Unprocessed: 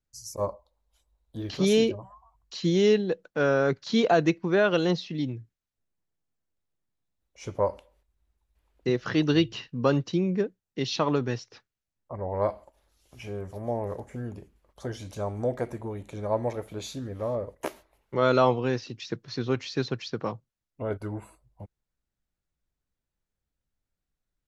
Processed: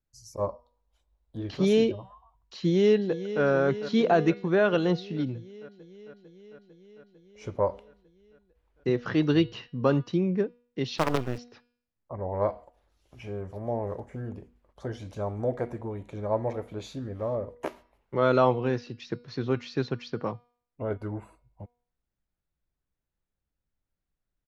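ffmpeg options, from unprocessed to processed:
-filter_complex "[0:a]asplit=2[s0][s1];[s1]afade=t=in:st=2.56:d=0.01,afade=t=out:st=3.43:d=0.01,aecho=0:1:450|900|1350|1800|2250|2700|3150|3600|4050|4500|4950|5400:0.237137|0.177853|0.13339|0.100042|0.0750317|0.0562738|0.0422054|0.031654|0.0237405|0.0178054|0.013354|0.0100155[s2];[s0][s2]amix=inputs=2:normalize=0,asettb=1/sr,asplit=3[s3][s4][s5];[s3]atrim=end=10.984[s6];[s4]atrim=start=10.98:end=11.38,asetpts=PTS-STARTPTS,afade=t=in:d=0.004:c=qsin,afade=t=out:st=0.396:d=0.004:c=qsin,acrusher=bits=4:dc=4:mix=0:aa=0.000001[s7];[s5]atrim=start=11.376[s8];[s6][s7]acrossfade=d=0.004:c1=hsin:c2=qsin[s9];[s9][s8]acrossfade=d=0.004:c1=qsin:c2=hsin,lowpass=f=2400:p=1,bandreject=f=241.4:t=h:w=4,bandreject=f=482.8:t=h:w=4,bandreject=f=724.2:t=h:w=4,bandreject=f=965.6:t=h:w=4,bandreject=f=1207:t=h:w=4,bandreject=f=1448.4:t=h:w=4,bandreject=f=1689.8:t=h:w=4,bandreject=f=1931.2:t=h:w=4,bandreject=f=2172.6:t=h:w=4,bandreject=f=2414:t=h:w=4,bandreject=f=2655.4:t=h:w=4,bandreject=f=2896.8:t=h:w=4,bandreject=f=3138.2:t=h:w=4,bandreject=f=3379.6:t=h:w=4,bandreject=f=3621:t=h:w=4,bandreject=f=3862.4:t=h:w=4,bandreject=f=4103.8:t=h:w=4,bandreject=f=4345.2:t=h:w=4,bandreject=f=4586.6:t=h:w=4,bandreject=f=4828:t=h:w=4,bandreject=f=5069.4:t=h:w=4,bandreject=f=5310.8:t=h:w=4,bandreject=f=5552.2:t=h:w=4"

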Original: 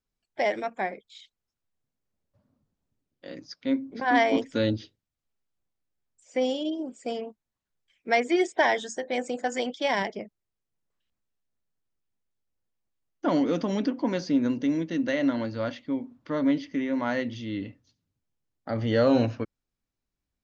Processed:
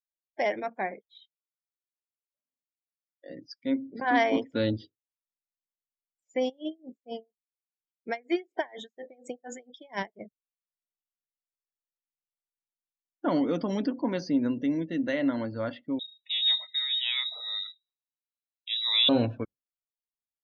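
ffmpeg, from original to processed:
-filter_complex "[0:a]asettb=1/sr,asplit=3[s0][s1][s2];[s0]atrim=end=1.084[s3];[s1]atrim=start=1.08:end=3.3,asetpts=PTS-STARTPTS,afade=t=in:d=0.004:c=qsin,afade=t=out:st=2.216:d=0.004:c=qsin,highpass=340,lowpass=6100[s4];[s2]atrim=start=3.296[s5];[s3][s4]acrossfade=d=0.004:c1=hsin:c2=qsin[s6];[s6][s5]acrossfade=d=0.004:c1=qsin:c2=hsin,asplit=3[s7][s8][s9];[s7]afade=t=out:st=6.48:d=0.02[s10];[s8]aeval=exprs='val(0)*pow(10,-29*(0.5-0.5*cos(2*PI*4.2*n/s))/20)':c=same,afade=t=in:st=6.48:d=0.02,afade=t=out:st=10.2:d=0.02[s11];[s9]afade=t=in:st=10.2:d=0.02[s12];[s10][s11][s12]amix=inputs=3:normalize=0,asettb=1/sr,asplit=3[s13][s14][s15];[s13]atrim=end=15.994[s16];[s14]atrim=start=15.99:end=19.09,asetpts=PTS-STARTPTS,afade=t=in:d=0.004:c=qsin,afade=t=out:st=3.096:d=0.004:c=qsin,lowpass=f=3400:t=q:w=0.5098,lowpass=f=3400:t=q:w=0.6013,lowpass=f=3400:t=q:w=0.9,lowpass=f=3400:t=q:w=2.563,afreqshift=-4000[s17];[s15]atrim=start=19.086[s18];[s16][s17]acrossfade=d=0.004:c1=hsin:c2=qsin[s19];[s19][s18]acrossfade=d=0.004:c1=qsin:c2=hsin,afftdn=nr=28:nf=-45,volume=0.794"

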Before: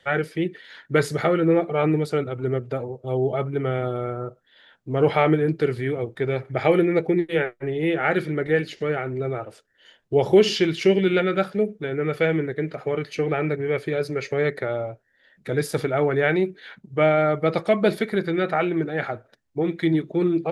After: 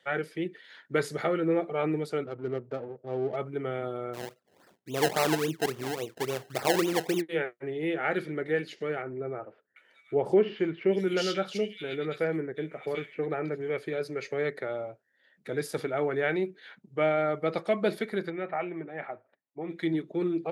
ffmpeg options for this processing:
-filter_complex "[0:a]asettb=1/sr,asplit=3[s0][s1][s2];[s0]atrim=end=2.254[s3];[s1]atrim=start=2.25:end=3.36,asetpts=PTS-STARTPTS,afade=t=in:d=0.004:c=qsin,afade=t=out:st=1.106:d=0.004:c=qsin,adynamicsmooth=sensitivity=4:basefreq=830[s4];[s2]atrim=start=3.356[s5];[s3][s4]acrossfade=d=0.004:c1=hsin:c2=qsin[s6];[s6][s5]acrossfade=d=0.004:c1=qsin:c2=hsin,asplit=3[s7][s8][s9];[s7]afade=t=out:st=4.13:d=0.02[s10];[s8]acrusher=samples=26:mix=1:aa=0.000001:lfo=1:lforange=26:lforate=3.6,afade=t=in:st=4.13:d=0.02,afade=t=out:st=7.2:d=0.02[s11];[s9]afade=t=in:st=7.2:d=0.02[s12];[s10][s11][s12]amix=inputs=3:normalize=0,asettb=1/sr,asplit=3[s13][s14][s15];[s13]atrim=end=9.024[s16];[s14]atrim=start=9.02:end=13.7,asetpts=PTS-STARTPTS,afade=t=in:d=0.004:c=qsin,afade=t=out:st=4.676:d=0.004:c=qsin,acrossover=split=2300[s17][s18];[s18]adelay=740[s19];[s17][s19]amix=inputs=2:normalize=0,atrim=end_sample=206388[s20];[s15]atrim=start=13.696[s21];[s16][s20]acrossfade=d=0.004:c1=hsin:c2=qsin[s22];[s22][s21]acrossfade=d=0.004:c1=qsin:c2=hsin,asplit=3[s23][s24][s25];[s23]afade=t=out:st=18.29:d=0.02[s26];[s24]highpass=110,equalizer=f=130:t=q:w=4:g=-8,equalizer=f=220:t=q:w=4:g=-8,equalizer=f=320:t=q:w=4:g=-5,equalizer=f=460:t=q:w=4:g=-7,equalizer=f=1500:t=q:w=4:g=-9,lowpass=f=2400:w=0.5412,lowpass=f=2400:w=1.3066,afade=t=in:st=18.29:d=0.02,afade=t=out:st=19.69:d=0.02[s27];[s25]afade=t=in:st=19.69:d=0.02[s28];[s26][s27][s28]amix=inputs=3:normalize=0,highpass=180,volume=0.447"

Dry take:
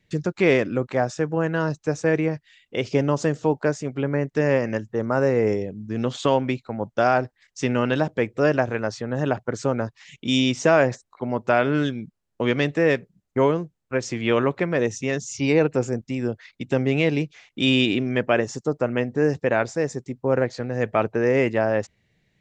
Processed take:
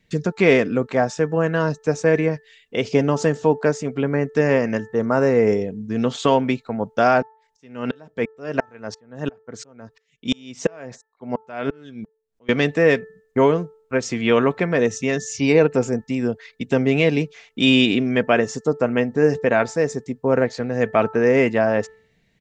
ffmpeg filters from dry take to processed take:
-filter_complex "[0:a]asettb=1/sr,asplit=3[s0][s1][s2];[s0]atrim=end=7.224[s3];[s1]atrim=start=7.22:end=12.49,asetpts=PTS-STARTPTS,afade=t=in:d=0.004:c=qsin,afade=t=out:st=5.266:d=0.004:c=qsin,aeval=exprs='val(0)*pow(10,-38*if(lt(mod(-2.9*n/s,1),2*abs(-2.9)/1000),1-mod(-2.9*n/s,1)/(2*abs(-2.9)/1000),(mod(-2.9*n/s,1)-2*abs(-2.9)/1000)/(1-2*abs(-2.9)/1000))/20)':c=same[s4];[s2]atrim=start=12.486[s5];[s3][s4]acrossfade=d=0.004:c1=hsin:c2=qsin[s6];[s6][s5]acrossfade=d=0.004:c1=qsin:c2=hsin,aecho=1:1:4.4:0.31,bandreject=f=439.7:t=h:w=4,bandreject=f=879.4:t=h:w=4,bandreject=f=1319.1:t=h:w=4,bandreject=f=1758.8:t=h:w=4,volume=1.41"

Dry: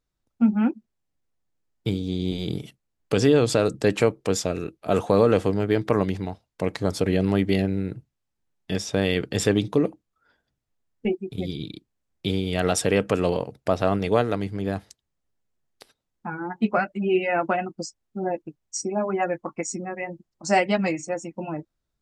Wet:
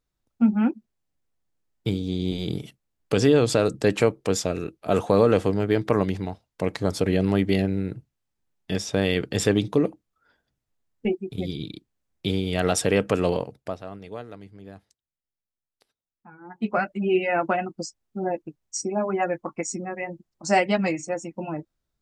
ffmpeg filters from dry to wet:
-filter_complex "[0:a]asplit=3[s0][s1][s2];[s0]atrim=end=13.81,asetpts=PTS-STARTPTS,afade=t=out:st=13.37:d=0.44:silence=0.158489[s3];[s1]atrim=start=13.81:end=16.41,asetpts=PTS-STARTPTS,volume=0.158[s4];[s2]atrim=start=16.41,asetpts=PTS-STARTPTS,afade=t=in:d=0.44:silence=0.158489[s5];[s3][s4][s5]concat=n=3:v=0:a=1"

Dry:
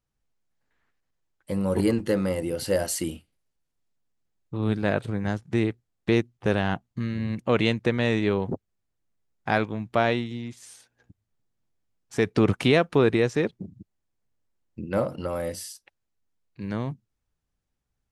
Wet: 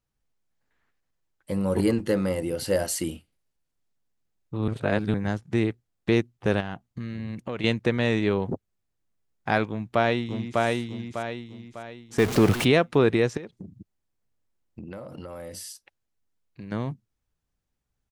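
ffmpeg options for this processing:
-filter_complex "[0:a]asettb=1/sr,asplit=3[s0][s1][s2];[s0]atrim=end=6.604[s3];[s1]atrim=start=6.6:end=7.64,asetpts=PTS-STARTPTS,afade=t=in:d=0.004:c=qsin,afade=t=out:st=1.036:d=0.004:c=qsin,acompressor=threshold=0.0316:ratio=3:attack=3.2:release=140:knee=1:detection=peak[s4];[s2]atrim=start=7.636[s5];[s3][s4]acrossfade=d=0.004:c1=hsin:c2=qsin[s6];[s6][s5]acrossfade=d=0.004:c1=qsin:c2=hsin,asplit=2[s7][s8];[s8]afade=t=in:st=9.68:d=0.01,afade=t=out:st=10.62:d=0.01,aecho=0:1:600|1200|1800|2400|3000:0.841395|0.336558|0.134623|0.0538493|0.0215397[s9];[s7][s9]amix=inputs=2:normalize=0,asettb=1/sr,asplit=3[s10][s11][s12];[s10]atrim=end=12.184[s13];[s11]atrim=start=12.18:end=12.65,asetpts=PTS-STARTPTS,afade=t=in:d=0.004:c=qsin,afade=t=out:st=0.466:d=0.004:c=qsin,aeval=exprs='val(0)+0.5*0.0596*sgn(val(0))':c=same[s14];[s12]atrim=start=12.646[s15];[s13][s14]acrossfade=d=0.004:c1=hsin:c2=qsin[s16];[s16][s15]acrossfade=d=0.004:c1=qsin:c2=hsin,asettb=1/sr,asplit=3[s17][s18][s19];[s17]atrim=end=13.374[s20];[s18]atrim=start=13.37:end=16.72,asetpts=PTS-STARTPTS,afade=t=in:d=0.004:c=qsin,afade=t=out:st=3.346:d=0.004:c=qsin,acompressor=threshold=0.02:ratio=12:attack=3.2:release=140:knee=1:detection=peak[s21];[s19]atrim=start=16.716[s22];[s20][s21]acrossfade=d=0.004:c1=hsin:c2=qsin[s23];[s23][s22]acrossfade=d=0.004:c1=qsin:c2=hsin,asplit=3[s24][s25][s26];[s24]atrim=end=4.682[s27];[s25]atrim=start=4.678:end=5.142,asetpts=PTS-STARTPTS,areverse[s28];[s26]atrim=start=5.138[s29];[s27][s28]acrossfade=d=0.004:c1=hsin:c2=hsin[s30];[s30][s29]acrossfade=d=0.004:c1=hsin:c2=hsin"

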